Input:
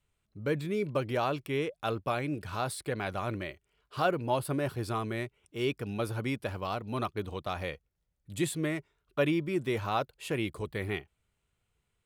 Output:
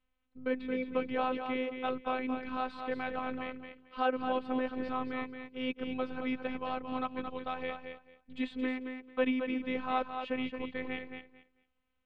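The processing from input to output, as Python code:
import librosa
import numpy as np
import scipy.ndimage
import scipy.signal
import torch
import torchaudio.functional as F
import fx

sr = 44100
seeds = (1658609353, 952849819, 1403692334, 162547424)

p1 = x + fx.echo_feedback(x, sr, ms=222, feedback_pct=19, wet_db=-7.0, dry=0)
p2 = fx.robotise(p1, sr, hz=257.0)
y = scipy.signal.sosfilt(scipy.signal.butter(4, 3300.0, 'lowpass', fs=sr, output='sos'), p2)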